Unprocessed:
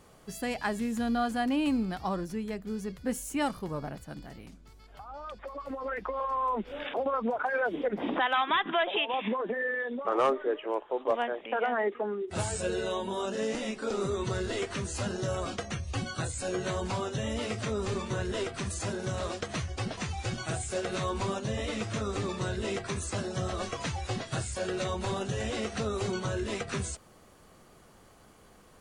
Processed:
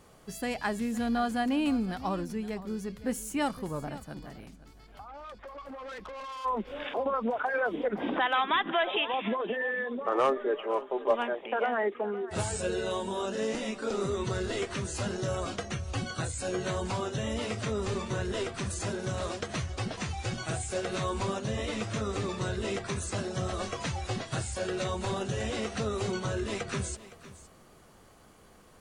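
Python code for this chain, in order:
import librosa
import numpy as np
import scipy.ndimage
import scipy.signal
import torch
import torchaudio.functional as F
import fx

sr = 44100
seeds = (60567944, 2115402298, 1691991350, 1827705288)

y = fx.tube_stage(x, sr, drive_db=39.0, bias=0.35, at=(5.07, 6.44), fade=0.02)
y = fx.comb(y, sr, ms=5.0, depth=0.63, at=(10.36, 11.35))
y = y + 10.0 ** (-16.5 / 20.0) * np.pad(y, (int(514 * sr / 1000.0), 0))[:len(y)]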